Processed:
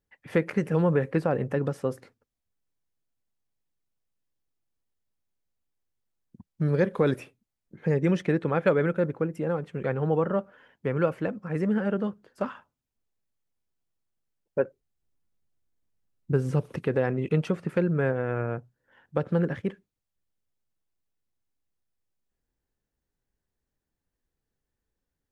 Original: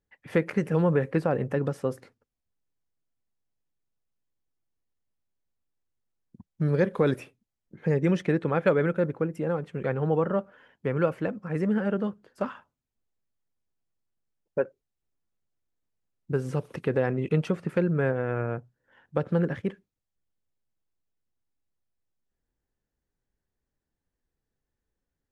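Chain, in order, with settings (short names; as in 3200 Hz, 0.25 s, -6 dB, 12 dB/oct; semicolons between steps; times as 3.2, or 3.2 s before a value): 14.59–16.84 low shelf 260 Hz +6 dB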